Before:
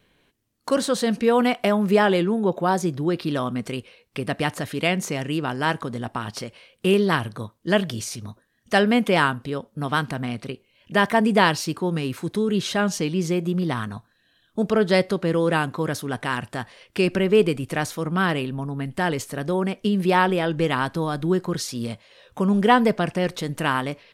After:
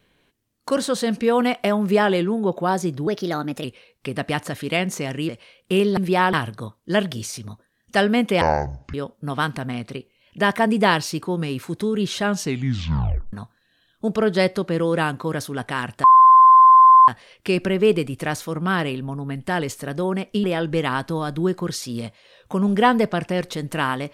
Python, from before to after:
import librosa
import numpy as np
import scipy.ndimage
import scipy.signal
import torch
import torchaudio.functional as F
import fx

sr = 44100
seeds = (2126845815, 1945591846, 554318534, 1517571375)

y = fx.edit(x, sr, fx.speed_span(start_s=3.07, length_s=0.68, speed=1.19),
    fx.cut(start_s=5.4, length_s=1.03),
    fx.speed_span(start_s=9.19, length_s=0.29, speed=0.55),
    fx.tape_stop(start_s=12.94, length_s=0.93),
    fx.insert_tone(at_s=16.58, length_s=1.04, hz=1040.0, db=-6.5),
    fx.move(start_s=19.94, length_s=0.36, to_s=7.11), tone=tone)